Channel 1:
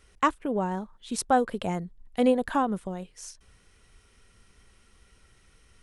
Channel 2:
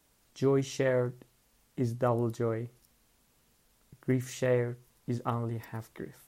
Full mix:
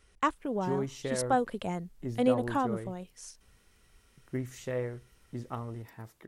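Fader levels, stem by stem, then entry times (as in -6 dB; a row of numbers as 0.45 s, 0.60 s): -4.5 dB, -6.0 dB; 0.00 s, 0.25 s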